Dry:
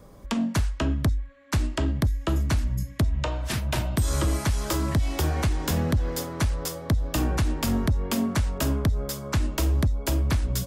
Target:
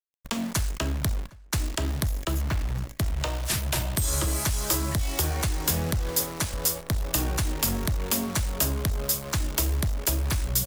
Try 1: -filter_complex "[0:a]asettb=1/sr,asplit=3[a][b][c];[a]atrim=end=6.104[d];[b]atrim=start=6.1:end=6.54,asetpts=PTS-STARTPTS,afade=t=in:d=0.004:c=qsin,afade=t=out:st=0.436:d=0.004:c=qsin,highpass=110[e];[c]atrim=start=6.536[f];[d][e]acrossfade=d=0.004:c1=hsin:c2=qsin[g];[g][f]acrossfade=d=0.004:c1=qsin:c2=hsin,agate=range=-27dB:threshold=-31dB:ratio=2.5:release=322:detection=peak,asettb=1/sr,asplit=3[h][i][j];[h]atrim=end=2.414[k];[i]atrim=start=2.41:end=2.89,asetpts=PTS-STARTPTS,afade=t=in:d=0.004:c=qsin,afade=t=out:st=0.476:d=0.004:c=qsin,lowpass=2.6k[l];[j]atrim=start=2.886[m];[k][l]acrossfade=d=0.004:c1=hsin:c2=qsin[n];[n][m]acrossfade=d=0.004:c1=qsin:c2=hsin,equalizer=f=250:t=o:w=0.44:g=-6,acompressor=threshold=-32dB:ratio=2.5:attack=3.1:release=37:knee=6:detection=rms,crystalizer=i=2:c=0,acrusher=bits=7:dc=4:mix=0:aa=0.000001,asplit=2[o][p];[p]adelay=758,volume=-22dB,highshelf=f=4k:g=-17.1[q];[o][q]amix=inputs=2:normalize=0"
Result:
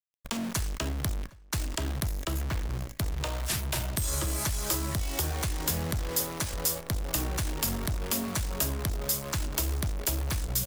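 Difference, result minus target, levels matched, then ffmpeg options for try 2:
compressor: peak gain reduction +4.5 dB
-filter_complex "[0:a]asettb=1/sr,asplit=3[a][b][c];[a]atrim=end=6.104[d];[b]atrim=start=6.1:end=6.54,asetpts=PTS-STARTPTS,afade=t=in:d=0.004:c=qsin,afade=t=out:st=0.436:d=0.004:c=qsin,highpass=110[e];[c]atrim=start=6.536[f];[d][e]acrossfade=d=0.004:c1=hsin:c2=qsin[g];[g][f]acrossfade=d=0.004:c1=qsin:c2=hsin,agate=range=-27dB:threshold=-31dB:ratio=2.5:release=322:detection=peak,asettb=1/sr,asplit=3[h][i][j];[h]atrim=end=2.414[k];[i]atrim=start=2.41:end=2.89,asetpts=PTS-STARTPTS,afade=t=in:d=0.004:c=qsin,afade=t=out:st=0.476:d=0.004:c=qsin,lowpass=2.6k[l];[j]atrim=start=2.886[m];[k][l]acrossfade=d=0.004:c1=hsin:c2=qsin[n];[n][m]acrossfade=d=0.004:c1=qsin:c2=hsin,equalizer=f=250:t=o:w=0.44:g=-6,acompressor=threshold=-24.5dB:ratio=2.5:attack=3.1:release=37:knee=6:detection=rms,crystalizer=i=2:c=0,acrusher=bits=7:dc=4:mix=0:aa=0.000001,asplit=2[o][p];[p]adelay=758,volume=-22dB,highshelf=f=4k:g=-17.1[q];[o][q]amix=inputs=2:normalize=0"

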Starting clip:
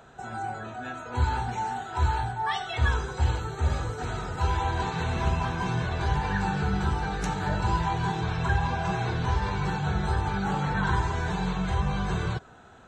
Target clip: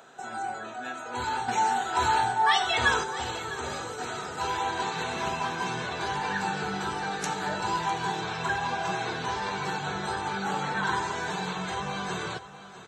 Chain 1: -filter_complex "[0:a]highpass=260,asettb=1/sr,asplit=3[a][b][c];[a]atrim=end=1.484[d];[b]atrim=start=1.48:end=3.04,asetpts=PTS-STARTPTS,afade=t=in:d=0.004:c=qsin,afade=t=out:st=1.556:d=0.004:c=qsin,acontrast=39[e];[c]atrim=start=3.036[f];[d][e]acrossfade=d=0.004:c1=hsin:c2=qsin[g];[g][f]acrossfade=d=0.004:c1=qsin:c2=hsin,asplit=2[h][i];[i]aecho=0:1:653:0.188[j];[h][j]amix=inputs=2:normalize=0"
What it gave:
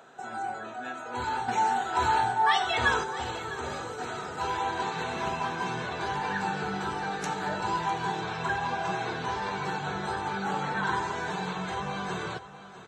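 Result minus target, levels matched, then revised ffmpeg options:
8000 Hz band -4.5 dB
-filter_complex "[0:a]highpass=260,highshelf=f=3.2k:g=6.5,asettb=1/sr,asplit=3[a][b][c];[a]atrim=end=1.484[d];[b]atrim=start=1.48:end=3.04,asetpts=PTS-STARTPTS,afade=t=in:d=0.004:c=qsin,afade=t=out:st=1.556:d=0.004:c=qsin,acontrast=39[e];[c]atrim=start=3.036[f];[d][e]acrossfade=d=0.004:c1=hsin:c2=qsin[g];[g][f]acrossfade=d=0.004:c1=qsin:c2=hsin,asplit=2[h][i];[i]aecho=0:1:653:0.188[j];[h][j]amix=inputs=2:normalize=0"

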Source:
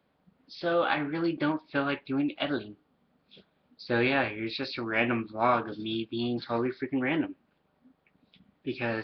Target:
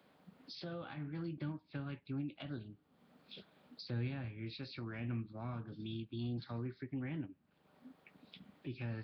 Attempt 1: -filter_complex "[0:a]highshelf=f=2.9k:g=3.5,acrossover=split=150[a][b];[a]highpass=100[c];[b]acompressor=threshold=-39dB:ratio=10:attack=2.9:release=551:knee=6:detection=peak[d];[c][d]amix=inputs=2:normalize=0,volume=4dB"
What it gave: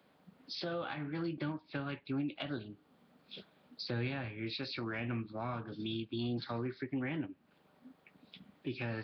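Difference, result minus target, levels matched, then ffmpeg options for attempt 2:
compressor: peak gain reduction -9 dB
-filter_complex "[0:a]highshelf=f=2.9k:g=3.5,acrossover=split=150[a][b];[a]highpass=100[c];[b]acompressor=threshold=-49dB:ratio=10:attack=2.9:release=551:knee=6:detection=peak[d];[c][d]amix=inputs=2:normalize=0,volume=4dB"

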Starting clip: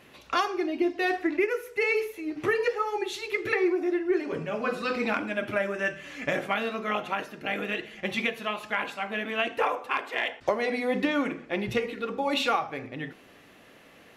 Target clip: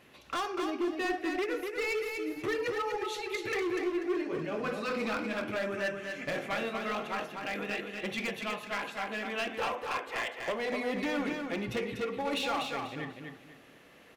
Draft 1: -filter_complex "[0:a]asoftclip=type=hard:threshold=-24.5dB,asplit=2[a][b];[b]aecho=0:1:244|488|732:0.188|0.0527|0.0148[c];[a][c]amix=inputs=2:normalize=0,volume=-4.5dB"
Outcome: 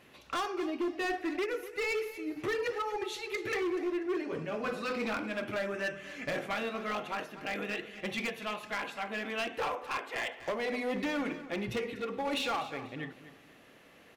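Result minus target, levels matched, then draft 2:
echo-to-direct -9.5 dB
-filter_complex "[0:a]asoftclip=type=hard:threshold=-24.5dB,asplit=2[a][b];[b]aecho=0:1:244|488|732|976:0.562|0.157|0.0441|0.0123[c];[a][c]amix=inputs=2:normalize=0,volume=-4.5dB"

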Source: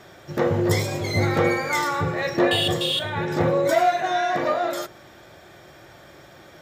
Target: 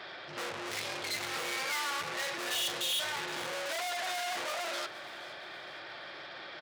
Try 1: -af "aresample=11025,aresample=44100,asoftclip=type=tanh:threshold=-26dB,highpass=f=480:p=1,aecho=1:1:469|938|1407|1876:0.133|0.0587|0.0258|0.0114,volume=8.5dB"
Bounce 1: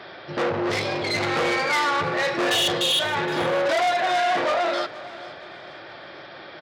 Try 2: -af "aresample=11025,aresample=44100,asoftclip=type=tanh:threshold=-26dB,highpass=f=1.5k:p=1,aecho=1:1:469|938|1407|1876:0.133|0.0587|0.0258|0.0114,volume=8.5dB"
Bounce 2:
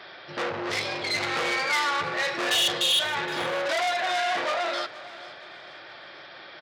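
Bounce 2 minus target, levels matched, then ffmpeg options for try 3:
soft clip: distortion -5 dB
-af "aresample=11025,aresample=44100,asoftclip=type=tanh:threshold=-38dB,highpass=f=1.5k:p=1,aecho=1:1:469|938|1407|1876:0.133|0.0587|0.0258|0.0114,volume=8.5dB"

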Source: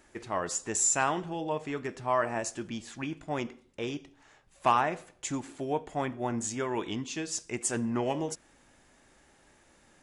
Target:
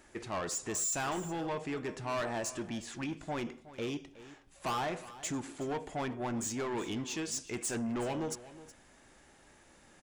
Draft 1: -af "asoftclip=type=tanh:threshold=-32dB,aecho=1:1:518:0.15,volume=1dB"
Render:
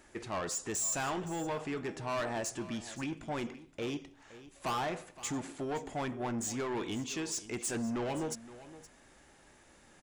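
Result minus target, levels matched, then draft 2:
echo 0.15 s late
-af "asoftclip=type=tanh:threshold=-32dB,aecho=1:1:368:0.15,volume=1dB"

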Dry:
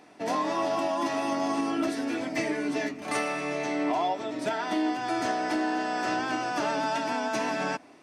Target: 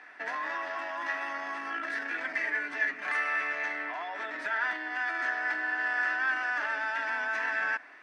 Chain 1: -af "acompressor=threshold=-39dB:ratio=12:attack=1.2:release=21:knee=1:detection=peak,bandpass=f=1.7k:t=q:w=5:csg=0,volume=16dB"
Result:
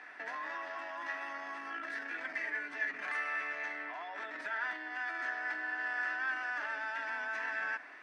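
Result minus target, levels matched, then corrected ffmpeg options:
compressor: peak gain reduction +6.5 dB
-af "acompressor=threshold=-32dB:ratio=12:attack=1.2:release=21:knee=1:detection=peak,bandpass=f=1.7k:t=q:w=5:csg=0,volume=16dB"

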